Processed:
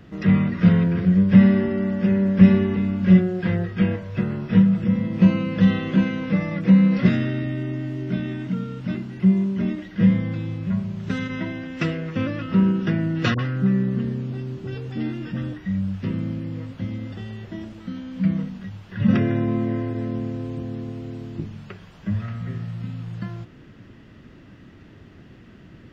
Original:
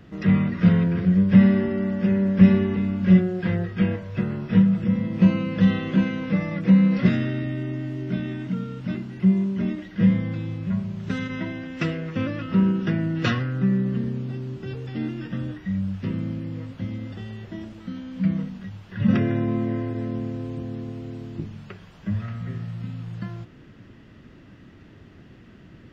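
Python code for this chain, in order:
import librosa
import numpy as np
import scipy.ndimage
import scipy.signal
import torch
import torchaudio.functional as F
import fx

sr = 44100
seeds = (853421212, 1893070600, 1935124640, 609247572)

y = fx.dispersion(x, sr, late='highs', ms=51.0, hz=700.0, at=(13.34, 15.53))
y = y * 10.0 ** (1.5 / 20.0)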